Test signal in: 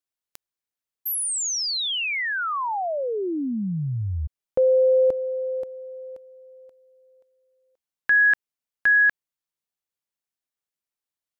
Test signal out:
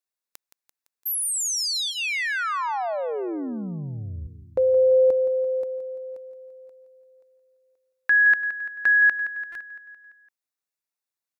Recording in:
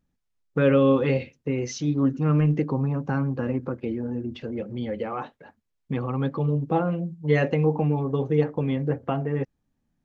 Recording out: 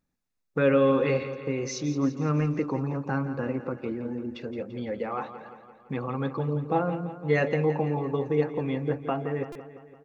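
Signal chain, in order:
low-shelf EQ 250 Hz −8 dB
notch filter 3,100 Hz, Q 7.1
on a send: repeating echo 170 ms, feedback 59%, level −12 dB
on the sum: buffer that repeats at 0:09.52, samples 128, times 10

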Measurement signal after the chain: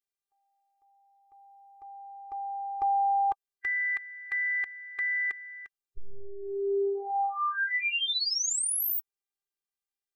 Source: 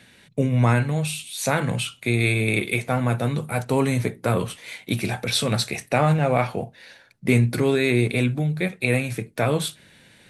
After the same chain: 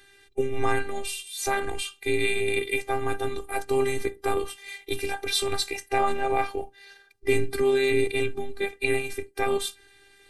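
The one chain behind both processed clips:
spectral magnitudes quantised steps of 15 dB
phases set to zero 397 Hz

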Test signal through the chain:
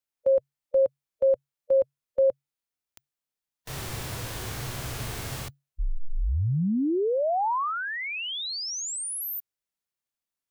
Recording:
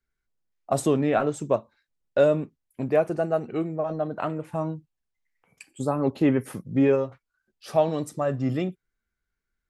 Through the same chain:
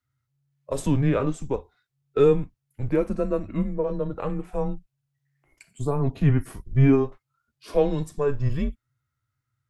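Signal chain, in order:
harmonic and percussive parts rebalanced percussive −8 dB
frequency shifter −140 Hz
level +3.5 dB

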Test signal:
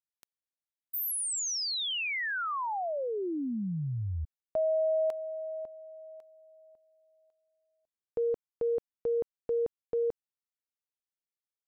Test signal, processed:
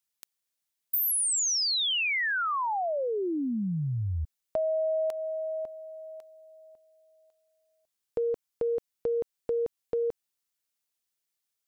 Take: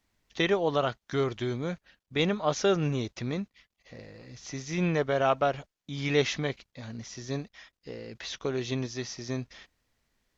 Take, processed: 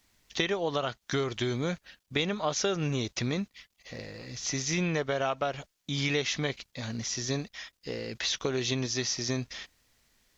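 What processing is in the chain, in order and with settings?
high-shelf EQ 2,500 Hz +8.5 dB
downward compressor 6 to 1, threshold −30 dBFS
level +4 dB

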